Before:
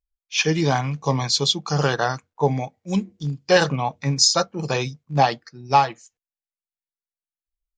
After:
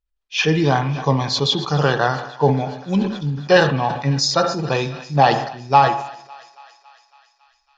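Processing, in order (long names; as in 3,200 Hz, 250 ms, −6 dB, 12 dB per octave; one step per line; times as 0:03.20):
low-pass filter 3,900 Hz 12 dB per octave
notch filter 2,200 Hz, Q 8.9
feedback echo with a high-pass in the loop 277 ms, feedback 74%, high-pass 690 Hz, level −20.5 dB
on a send at −12 dB: convolution reverb RT60 0.75 s, pre-delay 50 ms
on the sum: level that may fall only so fast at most 76 dB per second
level +3 dB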